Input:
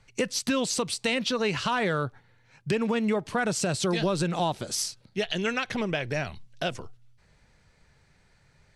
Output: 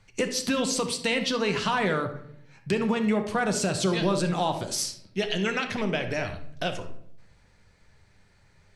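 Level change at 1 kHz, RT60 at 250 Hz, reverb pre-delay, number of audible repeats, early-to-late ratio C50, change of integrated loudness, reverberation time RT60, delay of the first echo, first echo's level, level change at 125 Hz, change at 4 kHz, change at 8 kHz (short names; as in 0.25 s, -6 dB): +1.5 dB, 1.0 s, 10 ms, none, 9.0 dB, +1.0 dB, 0.65 s, none, none, +0.5 dB, +1.0 dB, +0.5 dB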